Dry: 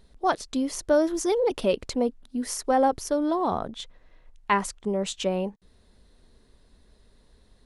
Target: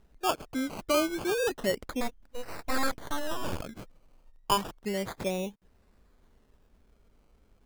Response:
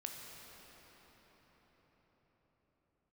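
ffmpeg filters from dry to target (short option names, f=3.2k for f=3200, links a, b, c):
-filter_complex "[0:a]acrusher=samples=19:mix=1:aa=0.000001:lfo=1:lforange=11.4:lforate=0.31,asplit=3[a][b][c];[a]afade=t=out:st=2:d=0.02[d];[b]aeval=exprs='abs(val(0))':c=same,afade=t=in:st=2:d=0.02,afade=t=out:st=3.61:d=0.02[e];[c]afade=t=in:st=3.61:d=0.02[f];[d][e][f]amix=inputs=3:normalize=0,volume=-5dB"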